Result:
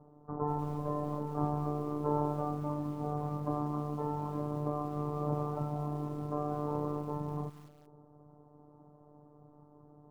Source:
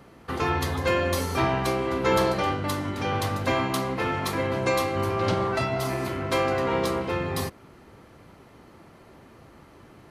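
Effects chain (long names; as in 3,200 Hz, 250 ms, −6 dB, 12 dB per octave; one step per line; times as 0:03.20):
phases set to zero 148 Hz
Butterworth low-pass 1,000 Hz 36 dB per octave
feedback echo at a low word length 190 ms, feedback 35%, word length 7 bits, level −15 dB
level −4.5 dB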